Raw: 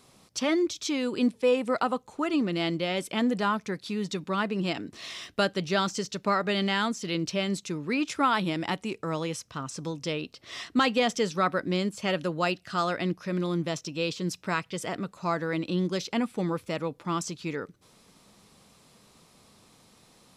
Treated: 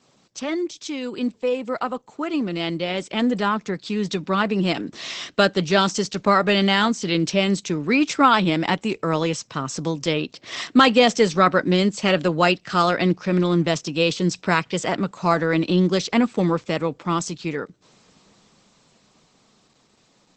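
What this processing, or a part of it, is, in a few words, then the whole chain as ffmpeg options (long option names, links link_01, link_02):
video call: -af "highpass=frequency=120:width=0.5412,highpass=frequency=120:width=1.3066,dynaudnorm=framelen=320:gausssize=21:maxgain=13dB" -ar 48000 -c:a libopus -b:a 12k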